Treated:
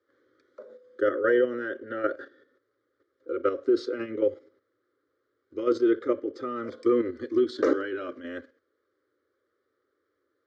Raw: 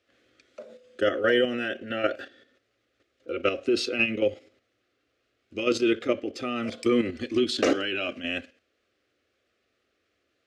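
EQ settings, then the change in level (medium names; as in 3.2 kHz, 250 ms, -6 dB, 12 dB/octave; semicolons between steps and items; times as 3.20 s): band-pass 140–4300 Hz; treble shelf 2.3 kHz -9 dB; static phaser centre 710 Hz, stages 6; +2.5 dB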